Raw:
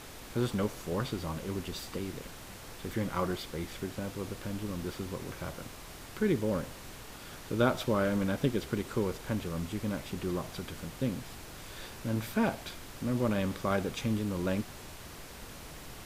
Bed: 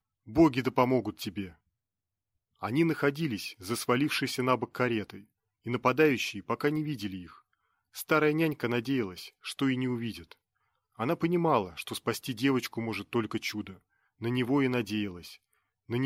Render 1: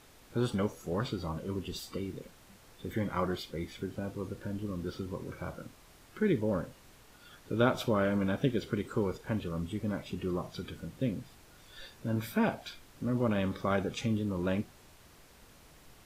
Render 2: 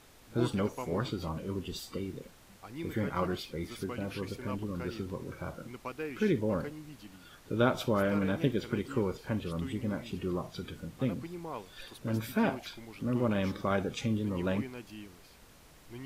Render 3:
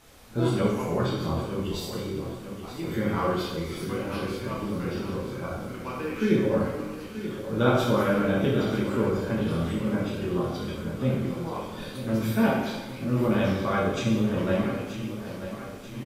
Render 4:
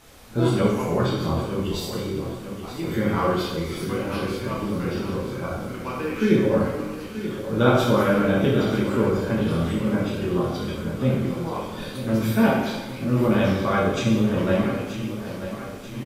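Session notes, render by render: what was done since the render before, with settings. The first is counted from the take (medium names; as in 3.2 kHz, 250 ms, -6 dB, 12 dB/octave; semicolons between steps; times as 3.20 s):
noise print and reduce 11 dB
add bed -15 dB
on a send: feedback delay 933 ms, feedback 57%, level -11.5 dB; on the sum: plate-style reverb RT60 1.1 s, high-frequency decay 0.8×, DRR -5 dB
trim +4 dB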